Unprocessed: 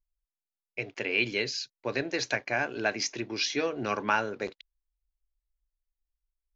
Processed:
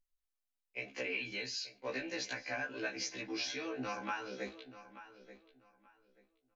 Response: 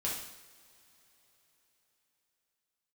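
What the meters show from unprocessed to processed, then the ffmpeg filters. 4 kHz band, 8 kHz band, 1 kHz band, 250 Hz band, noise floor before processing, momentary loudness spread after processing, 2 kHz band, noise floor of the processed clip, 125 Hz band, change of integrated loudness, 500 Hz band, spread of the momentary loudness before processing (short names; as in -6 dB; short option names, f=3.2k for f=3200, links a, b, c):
-8.0 dB, n/a, -11.0 dB, -8.5 dB, under -85 dBFS, 16 LU, -9.5 dB, under -85 dBFS, -12.5 dB, -9.5 dB, -10.5 dB, 10 LU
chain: -filter_complex "[0:a]flanger=delay=7.4:depth=9.4:regen=56:speed=0.37:shape=sinusoidal,equalizer=f=94:w=1.1:g=-7,acrossover=split=370|970[a][b][c];[b]alimiter=level_in=10.5dB:limit=-24dB:level=0:latency=1,volume=-10.5dB[d];[a][d][c]amix=inputs=3:normalize=0,acompressor=threshold=-38dB:ratio=4,aecho=1:1:3.9:0.37,asplit=2[e][f];[f]adelay=883,lowpass=f=3.8k:p=1,volume=-14dB,asplit=2[g][h];[h]adelay=883,lowpass=f=3.8k:p=1,volume=0.23,asplit=2[i][j];[j]adelay=883,lowpass=f=3.8k:p=1,volume=0.23[k];[e][g][i][k]amix=inputs=4:normalize=0,asplit=2[l][m];[1:a]atrim=start_sample=2205,afade=t=out:st=0.25:d=0.01,atrim=end_sample=11466,asetrate=61740,aresample=44100[n];[m][n]afir=irnorm=-1:irlink=0,volume=-16.5dB[o];[l][o]amix=inputs=2:normalize=0,afftfilt=real='re*1.73*eq(mod(b,3),0)':imag='im*1.73*eq(mod(b,3),0)':win_size=2048:overlap=0.75,volume=3dB"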